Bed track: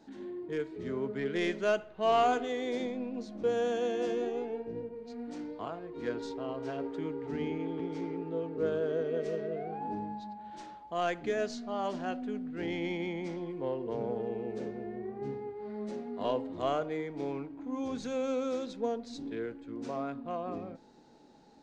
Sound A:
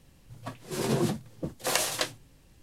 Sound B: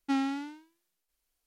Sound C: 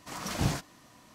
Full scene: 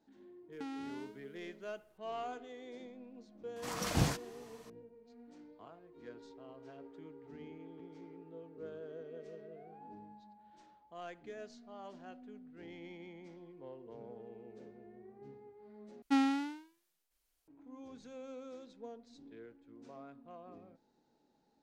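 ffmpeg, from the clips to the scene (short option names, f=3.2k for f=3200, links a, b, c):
-filter_complex "[2:a]asplit=2[a][b];[0:a]volume=-15.5dB[c];[a]acompressor=threshold=-42dB:ratio=6:attack=3.2:release=140:knee=1:detection=peak[d];[c]asplit=2[e][f];[e]atrim=end=16.024[g];[b]atrim=end=1.46,asetpts=PTS-STARTPTS,volume=-0.5dB[h];[f]atrim=start=17.476[i];[d]atrim=end=1.46,asetpts=PTS-STARTPTS,volume=-1.5dB,afade=t=in:d=0.004:c=hsin,afade=t=out:st=1.456:d=0.004:c=hsin,adelay=520[j];[3:a]atrim=end=1.14,asetpts=PTS-STARTPTS,volume=-2dB,afade=t=in:d=0.004:c=hsin,afade=t=out:st=1.136:d=0.004:c=hsin,adelay=3560[k];[g][h]acrossfade=d=0.004:c1=hsin:c2=hsin[l];[l][i]acrossfade=d=0.004:c1=hsin:c2=hsin[m];[m][j][k]amix=inputs=3:normalize=0"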